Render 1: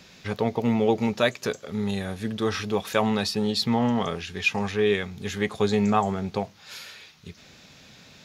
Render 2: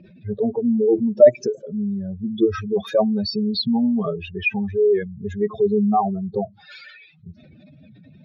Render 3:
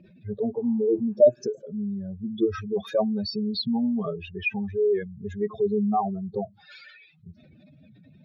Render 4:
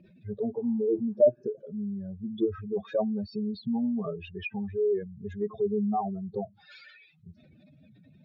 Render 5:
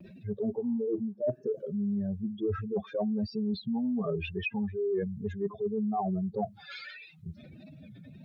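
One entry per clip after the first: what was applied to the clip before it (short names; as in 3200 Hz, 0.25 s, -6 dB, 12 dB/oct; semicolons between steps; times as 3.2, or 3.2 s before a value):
spectral contrast raised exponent 3.4; low-pass opened by the level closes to 2200 Hz, open at -23.5 dBFS; small resonant body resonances 340/610 Hz, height 14 dB, ringing for 65 ms; gain +2.5 dB
spectral repair 0.58–1.4, 710–3100 Hz both; gain -5.5 dB
treble ducked by the level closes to 990 Hz, closed at -23 dBFS; gain -3.5 dB
reverse; compressor 20:1, threshold -35 dBFS, peak gain reduction 21.5 dB; reverse; vibrato 1.6 Hz 63 cents; gain +7.5 dB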